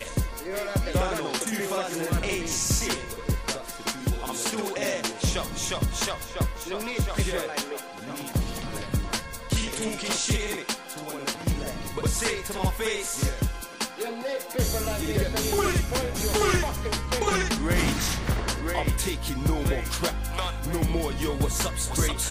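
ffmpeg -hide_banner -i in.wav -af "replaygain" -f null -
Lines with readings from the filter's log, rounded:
track_gain = +9.2 dB
track_peak = 0.180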